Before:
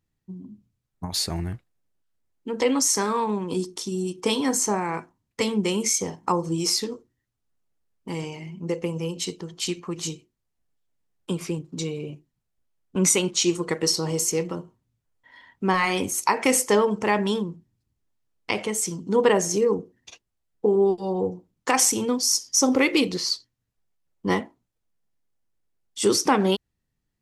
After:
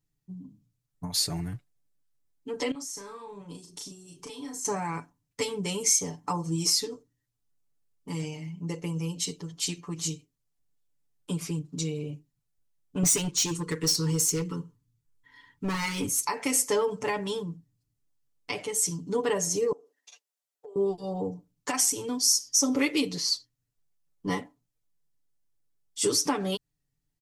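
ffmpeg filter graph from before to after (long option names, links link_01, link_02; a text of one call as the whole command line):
ffmpeg -i in.wav -filter_complex "[0:a]asettb=1/sr,asplit=3[link_01][link_02][link_03];[link_01]atrim=end=2.714[link_04];[link_02]atrim=start=2.71:end=4.65,asetpts=PTS-STARTPTS,afade=type=in:duration=0.004:curve=qsin,afade=type=out:start_time=1.936:duration=0.004:curve=qsin,acompressor=threshold=-35dB:ratio=12:attack=3.2:release=140:knee=1:detection=peak,asplit=2[link_05][link_06];[link_06]adelay=35,volume=-5dB[link_07];[link_05][link_07]amix=inputs=2:normalize=0,atrim=end_sample=85554[link_08];[link_03]atrim=start=4.646[link_09];[link_04][link_08]acrossfade=duration=0.004:curve1=hsin:curve2=qsin[link_10];[link_10][link_09]acrossfade=duration=0.004:curve1=qsin:curve2=hsin,asettb=1/sr,asplit=3[link_11][link_12][link_13];[link_11]atrim=end=13.034[link_14];[link_12]atrim=start=13.03:end=16.27,asetpts=PTS-STARTPTS,afade=type=in:duration=0.004:curve=qsin,afade=type=out:start_time=3.236:duration=0.004:curve=qsin,asuperstop=centerf=680:order=20:qfactor=2.1,lowshelf=frequency=140:gain=6,volume=19.5dB,asoftclip=hard,volume=-19.5dB[link_15];[link_13]atrim=start=16.266[link_16];[link_14][link_15]acrossfade=duration=0.004:curve1=hsin:curve2=qsin[link_17];[link_17][link_16]acrossfade=duration=0.004:curve1=qsin:curve2=hsin,asettb=1/sr,asplit=3[link_18][link_19][link_20];[link_18]atrim=end=19.724[link_21];[link_19]atrim=start=19.72:end=20.76,asetpts=PTS-STARTPTS,afade=type=in:duration=0.004:curve=qsin,afade=type=out:start_time=1.036:duration=0.004:curve=qsin,highpass=frequency=460:width=0.5412,highpass=frequency=460:width=1.3066,acompressor=threshold=-46dB:ratio=2.5:attack=3.2:release=140:knee=1:detection=peak[link_22];[link_20]atrim=start=20.756[link_23];[link_21][link_22]acrossfade=duration=0.004:curve1=hsin:curve2=qsin[link_24];[link_24][link_23]acrossfade=duration=0.004:curve1=qsin:curve2=hsin,alimiter=limit=-11.5dB:level=0:latency=1:release=385,bass=frequency=250:gain=4,treble=frequency=4000:gain=7,aecho=1:1:6.9:0.96,volume=-8.5dB" out.wav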